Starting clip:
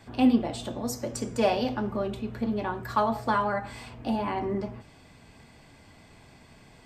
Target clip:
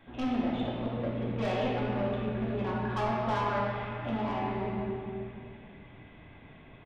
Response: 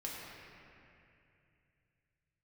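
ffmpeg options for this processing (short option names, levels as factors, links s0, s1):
-filter_complex "[0:a]aresample=8000,acrusher=bits=5:mode=log:mix=0:aa=0.000001,aresample=44100,asoftclip=type=tanh:threshold=0.0473[s0];[1:a]atrim=start_sample=2205[s1];[s0][s1]afir=irnorm=-1:irlink=0"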